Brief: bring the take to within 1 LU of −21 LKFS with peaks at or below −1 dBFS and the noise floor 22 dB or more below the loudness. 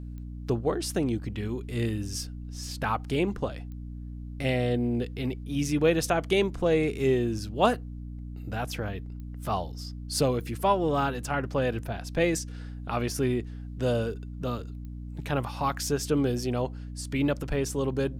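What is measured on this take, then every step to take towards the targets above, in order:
number of clicks 5; mains hum 60 Hz; hum harmonics up to 300 Hz; level of the hum −36 dBFS; integrated loudness −29.0 LKFS; sample peak −9.5 dBFS; target loudness −21.0 LKFS
→ click removal
hum removal 60 Hz, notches 5
level +8 dB

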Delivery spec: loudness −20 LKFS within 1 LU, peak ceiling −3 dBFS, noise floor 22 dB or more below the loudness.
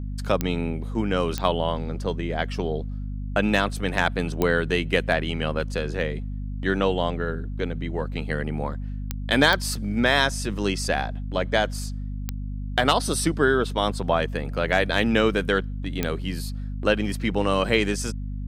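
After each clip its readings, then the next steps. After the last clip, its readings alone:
number of clicks 7; mains hum 50 Hz; hum harmonics up to 250 Hz; level of the hum −28 dBFS; integrated loudness −25.0 LKFS; sample peak −5.0 dBFS; target loudness −20.0 LKFS
→ click removal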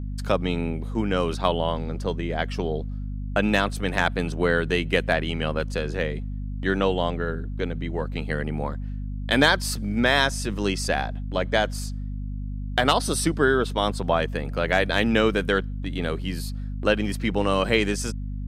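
number of clicks 0; mains hum 50 Hz; hum harmonics up to 250 Hz; level of the hum −28 dBFS
→ mains-hum notches 50/100/150/200/250 Hz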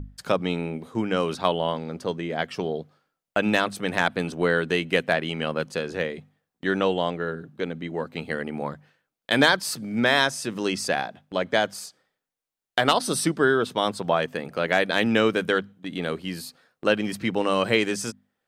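mains hum none found; integrated loudness −25.0 LKFS; sample peak −5.5 dBFS; target loudness −20.0 LKFS
→ level +5 dB
brickwall limiter −3 dBFS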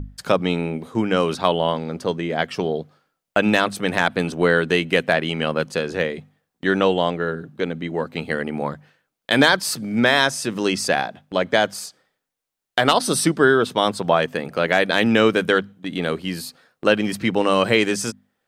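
integrated loudness −20.5 LKFS; sample peak −3.0 dBFS; background noise floor −81 dBFS

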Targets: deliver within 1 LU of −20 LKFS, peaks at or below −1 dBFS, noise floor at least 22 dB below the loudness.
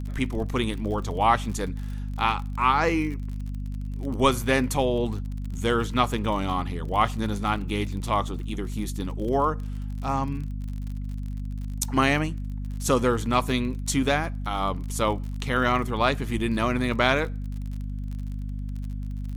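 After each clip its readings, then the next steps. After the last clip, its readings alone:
crackle rate 44 per second; mains hum 50 Hz; hum harmonics up to 250 Hz; level of the hum −29 dBFS; integrated loudness −26.5 LKFS; sample peak −5.5 dBFS; target loudness −20.0 LKFS
→ click removal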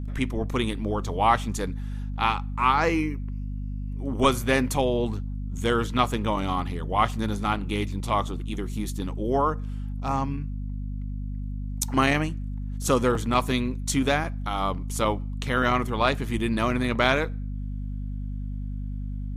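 crackle rate 0.31 per second; mains hum 50 Hz; hum harmonics up to 250 Hz; level of the hum −29 dBFS
→ hum removal 50 Hz, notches 5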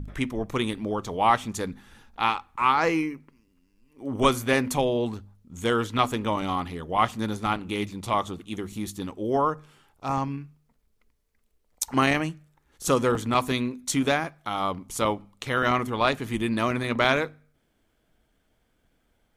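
mains hum none found; integrated loudness −26.5 LKFS; sample peak −5.5 dBFS; target loudness −20.0 LKFS
→ level +6.5 dB
brickwall limiter −1 dBFS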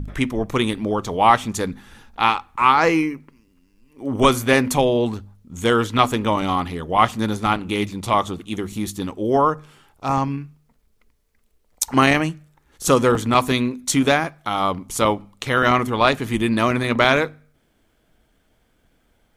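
integrated loudness −20.0 LKFS; sample peak −1.0 dBFS; background noise floor −63 dBFS

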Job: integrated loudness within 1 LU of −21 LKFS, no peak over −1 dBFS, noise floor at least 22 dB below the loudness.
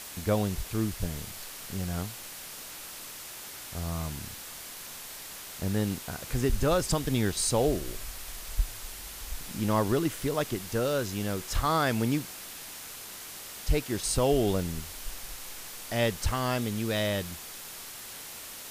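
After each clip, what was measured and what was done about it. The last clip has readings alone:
background noise floor −43 dBFS; target noise floor −54 dBFS; integrated loudness −31.5 LKFS; sample peak −14.0 dBFS; target loudness −21.0 LKFS
→ broadband denoise 11 dB, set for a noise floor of −43 dBFS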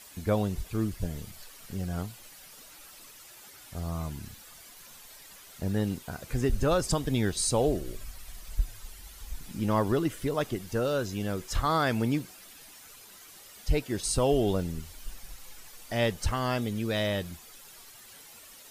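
background noise floor −51 dBFS; target noise floor −52 dBFS
→ broadband denoise 6 dB, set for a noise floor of −51 dBFS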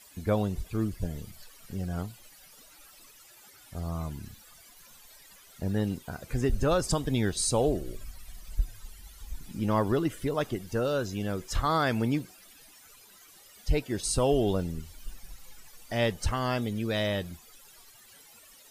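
background noise floor −55 dBFS; integrated loudness −30.0 LKFS; sample peak −14.5 dBFS; target loudness −21.0 LKFS
→ level +9 dB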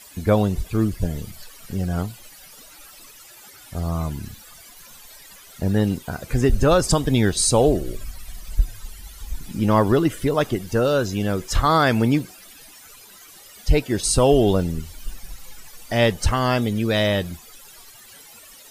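integrated loudness −21.0 LKFS; sample peak −5.5 dBFS; background noise floor −46 dBFS

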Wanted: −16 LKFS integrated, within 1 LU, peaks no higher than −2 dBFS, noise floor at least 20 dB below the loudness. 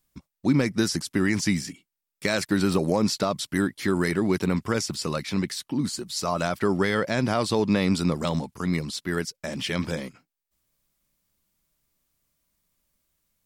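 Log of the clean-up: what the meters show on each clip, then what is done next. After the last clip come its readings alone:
integrated loudness −26.0 LKFS; sample peak −10.0 dBFS; target loudness −16.0 LKFS
→ level +10 dB
brickwall limiter −2 dBFS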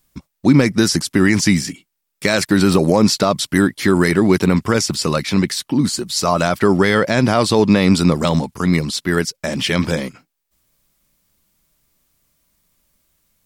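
integrated loudness −16.0 LKFS; sample peak −2.0 dBFS; background noise floor −75 dBFS

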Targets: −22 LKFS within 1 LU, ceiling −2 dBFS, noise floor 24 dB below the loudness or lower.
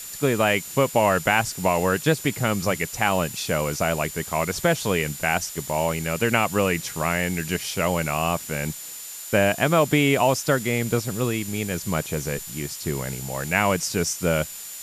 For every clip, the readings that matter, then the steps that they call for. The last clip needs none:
interfering tone 7,100 Hz; level of the tone −39 dBFS; background noise floor −37 dBFS; target noise floor −48 dBFS; integrated loudness −23.5 LKFS; sample peak −5.5 dBFS; target loudness −22.0 LKFS
→ notch filter 7,100 Hz, Q 30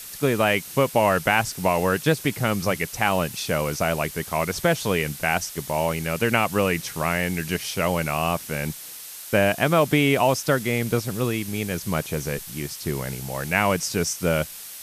interfering tone none found; background noise floor −39 dBFS; target noise floor −48 dBFS
→ broadband denoise 9 dB, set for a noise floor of −39 dBFS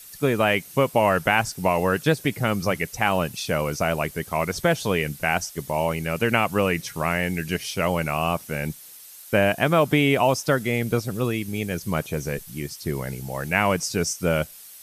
background noise floor −44 dBFS; target noise floor −48 dBFS
→ broadband denoise 6 dB, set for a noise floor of −44 dBFS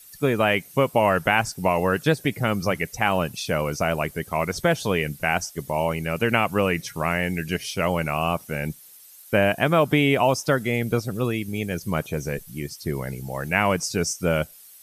background noise floor −48 dBFS; integrated loudness −23.5 LKFS; sample peak −5.5 dBFS; target loudness −22.0 LKFS
→ level +1.5 dB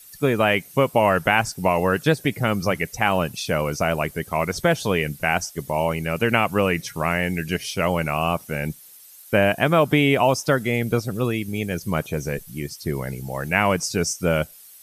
integrated loudness −22.0 LKFS; sample peak −4.0 dBFS; background noise floor −46 dBFS

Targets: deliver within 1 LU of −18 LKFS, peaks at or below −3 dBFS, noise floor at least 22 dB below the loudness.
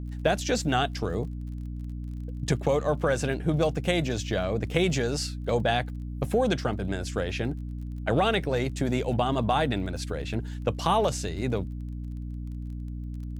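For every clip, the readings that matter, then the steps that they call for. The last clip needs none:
crackle rate 27 per second; mains hum 60 Hz; hum harmonics up to 300 Hz; level of the hum −32 dBFS; integrated loudness −28.5 LKFS; sample peak −8.5 dBFS; target loudness −18.0 LKFS
→ click removal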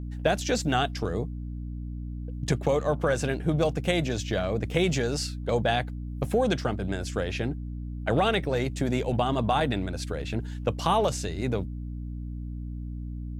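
crackle rate 0.075 per second; mains hum 60 Hz; hum harmonics up to 300 Hz; level of the hum −32 dBFS
→ hum removal 60 Hz, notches 5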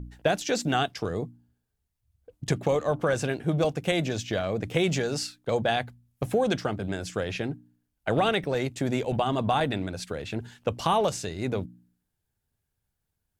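mains hum none found; integrated loudness −28.0 LKFS; sample peak −9.0 dBFS; target loudness −18.0 LKFS
→ level +10 dB
brickwall limiter −3 dBFS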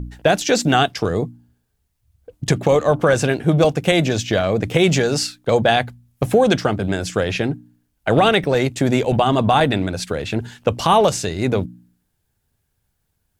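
integrated loudness −18.5 LKFS; sample peak −3.0 dBFS; background noise floor −71 dBFS

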